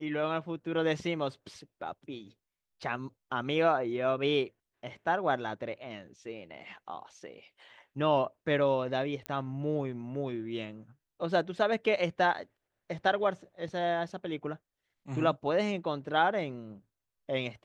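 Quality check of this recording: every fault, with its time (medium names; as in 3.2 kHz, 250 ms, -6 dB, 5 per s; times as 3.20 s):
9.26 s: pop -20 dBFS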